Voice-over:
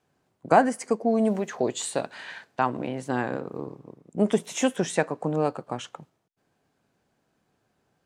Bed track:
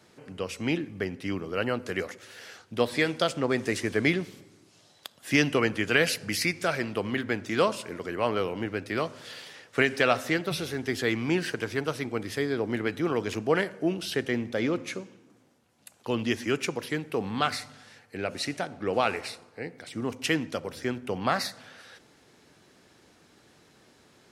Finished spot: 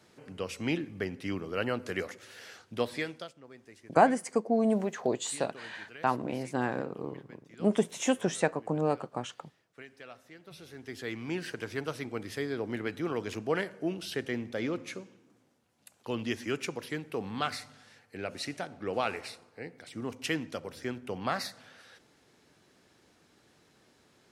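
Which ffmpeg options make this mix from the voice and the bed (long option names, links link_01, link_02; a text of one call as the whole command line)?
ffmpeg -i stem1.wav -i stem2.wav -filter_complex "[0:a]adelay=3450,volume=-3.5dB[link_01];[1:a]volume=17dB,afade=type=out:start_time=2.64:duration=0.69:silence=0.0749894,afade=type=in:start_time=10.36:duration=1.43:silence=0.1[link_02];[link_01][link_02]amix=inputs=2:normalize=0" out.wav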